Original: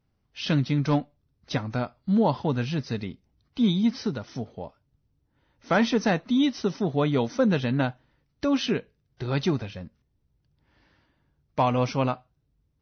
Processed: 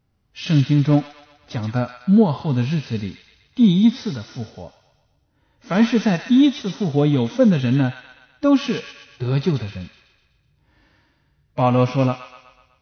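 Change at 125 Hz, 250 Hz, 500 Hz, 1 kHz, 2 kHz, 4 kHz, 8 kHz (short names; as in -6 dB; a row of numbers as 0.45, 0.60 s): +8.0 dB, +7.5 dB, +4.5 dB, +2.0 dB, +1.5 dB, +3.0 dB, n/a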